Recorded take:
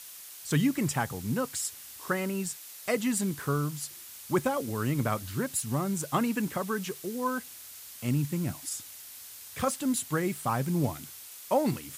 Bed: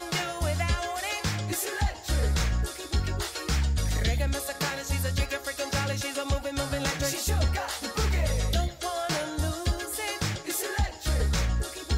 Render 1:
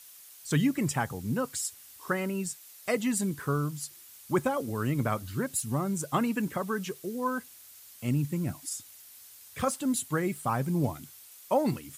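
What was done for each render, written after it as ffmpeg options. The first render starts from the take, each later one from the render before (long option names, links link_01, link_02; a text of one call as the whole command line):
ffmpeg -i in.wav -af "afftdn=noise_reduction=7:noise_floor=-46" out.wav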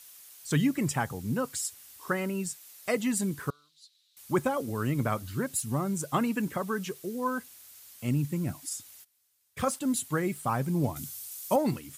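ffmpeg -i in.wav -filter_complex "[0:a]asettb=1/sr,asplit=3[link_01][link_02][link_03];[link_01]atrim=end=3.504[link_04];[link_02]atrim=start=3.5:end=4.17,asetpts=PTS-STARTPTS,afade=type=in:duration=0.004:curve=qsin,afade=type=out:start_time=0.666:duration=0.004:curve=qsin,bandpass=frequency=3900:width_type=q:width=7.9[link_05];[link_03]atrim=start=4.166[link_06];[link_04][link_05]acrossfade=duration=0.004:curve1=hsin:curve2=qsin[link_07];[link_07][link_06]acrossfade=duration=0.004:curve1=qsin:curve2=hsin,asplit=3[link_08][link_09][link_10];[link_08]afade=type=out:start_time=9.03:duration=0.02[link_11];[link_09]agate=range=-21dB:threshold=-46dB:ratio=16:release=100:detection=peak,afade=type=in:start_time=9.03:duration=0.02,afade=type=out:start_time=9.94:duration=0.02[link_12];[link_10]afade=type=in:start_time=9.94:duration=0.02[link_13];[link_11][link_12][link_13]amix=inputs=3:normalize=0,asettb=1/sr,asplit=3[link_14][link_15][link_16];[link_14]atrim=end=10.964[link_17];[link_15]atrim=start=10.96:end=11.56,asetpts=PTS-STARTPTS,afade=type=in:duration=0.004:curve=qsin,afade=type=out:start_time=0.596:duration=0.004:curve=qsin,bass=frequency=250:gain=8,treble=frequency=4000:gain=10[link_18];[link_16]atrim=start=11.556[link_19];[link_17][link_18]acrossfade=duration=0.004:curve1=hsin:curve2=qsin[link_20];[link_20][link_19]acrossfade=duration=0.004:curve1=qsin:curve2=hsin" out.wav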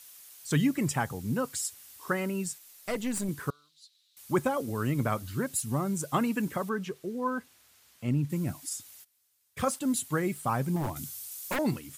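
ffmpeg -i in.wav -filter_complex "[0:a]asettb=1/sr,asplit=3[link_01][link_02][link_03];[link_01]atrim=end=2.584[link_04];[link_02]atrim=start=2.58:end=3.29,asetpts=PTS-STARTPTS,afade=type=in:duration=0.004:curve=qsin,afade=type=out:start_time=0.706:duration=0.004:curve=qsin,aeval=exprs='(tanh(17.8*val(0)+0.55)-tanh(0.55))/17.8':channel_layout=same[link_05];[link_03]atrim=start=3.286[link_06];[link_04][link_05]acrossfade=duration=0.004:curve1=hsin:curve2=qsin[link_07];[link_07][link_06]acrossfade=duration=0.004:curve1=qsin:curve2=hsin,asettb=1/sr,asplit=3[link_08][link_09][link_10];[link_08]atrim=end=6.694[link_11];[link_09]atrim=start=6.69:end=8.3,asetpts=PTS-STARTPTS,afade=type=in:duration=0.004:curve=qsin,afade=type=out:start_time=1.606:duration=0.004:curve=qsin,lowpass=frequency=2600:poles=1[link_12];[link_10]atrim=start=8.296[link_13];[link_11][link_12]acrossfade=duration=0.004:curve1=hsin:curve2=qsin[link_14];[link_14][link_13]acrossfade=duration=0.004:curve1=qsin:curve2=hsin,asettb=1/sr,asplit=3[link_15][link_16][link_17];[link_15]atrim=end=10.764[link_18];[link_16]atrim=start=10.76:end=11.59,asetpts=PTS-STARTPTS,afade=type=in:duration=0.004:curve=qsin,afade=type=out:start_time=0.826:duration=0.004:curve=qsin,aeval=exprs='0.0562*(abs(mod(val(0)/0.0562+3,4)-2)-1)':channel_layout=same[link_19];[link_17]atrim=start=11.586[link_20];[link_18][link_19]acrossfade=duration=0.004:curve1=hsin:curve2=qsin[link_21];[link_21][link_20]acrossfade=duration=0.004:curve1=qsin:curve2=hsin" out.wav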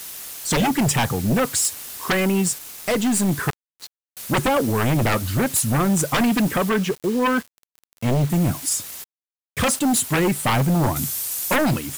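ffmpeg -i in.wav -af "aeval=exprs='0.178*sin(PI/2*3.55*val(0)/0.178)':channel_layout=same,acrusher=bits=5:mix=0:aa=0.000001" out.wav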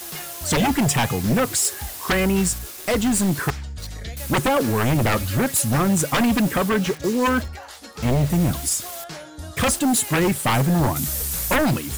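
ffmpeg -i in.wav -i bed.wav -filter_complex "[1:a]volume=-7dB[link_01];[0:a][link_01]amix=inputs=2:normalize=0" out.wav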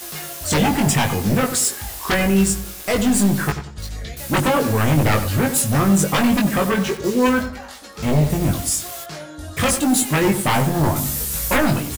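ffmpeg -i in.wav -filter_complex "[0:a]asplit=2[link_01][link_02];[link_02]adelay=20,volume=-3.5dB[link_03];[link_01][link_03]amix=inputs=2:normalize=0,asplit=2[link_04][link_05];[link_05]adelay=92,lowpass=frequency=1500:poles=1,volume=-9dB,asplit=2[link_06][link_07];[link_07]adelay=92,lowpass=frequency=1500:poles=1,volume=0.39,asplit=2[link_08][link_09];[link_09]adelay=92,lowpass=frequency=1500:poles=1,volume=0.39,asplit=2[link_10][link_11];[link_11]adelay=92,lowpass=frequency=1500:poles=1,volume=0.39[link_12];[link_04][link_06][link_08][link_10][link_12]amix=inputs=5:normalize=0" out.wav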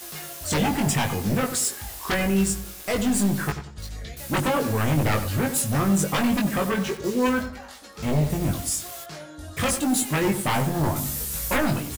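ffmpeg -i in.wav -af "volume=-5.5dB" out.wav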